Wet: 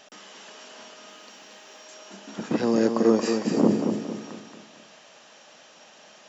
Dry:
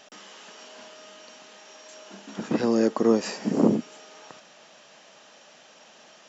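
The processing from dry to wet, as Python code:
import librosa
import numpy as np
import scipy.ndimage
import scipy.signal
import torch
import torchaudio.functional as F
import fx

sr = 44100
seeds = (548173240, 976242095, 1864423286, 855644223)

y = fx.mod_noise(x, sr, seeds[0], snr_db=31, at=(1.08, 1.85))
y = fx.echo_feedback(y, sr, ms=227, feedback_pct=41, wet_db=-6.0)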